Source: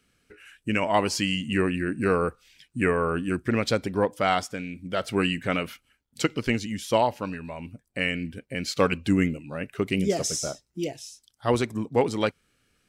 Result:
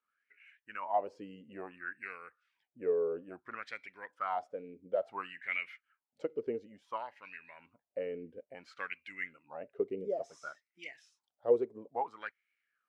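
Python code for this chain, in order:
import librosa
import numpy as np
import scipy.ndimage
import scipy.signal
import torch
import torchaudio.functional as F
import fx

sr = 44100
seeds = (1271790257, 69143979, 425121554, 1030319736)

y = fx.rider(x, sr, range_db=4, speed_s=0.5)
y = fx.filter_lfo_bandpass(y, sr, shape='sine', hz=0.58, low_hz=430.0, high_hz=2200.0, q=7.1)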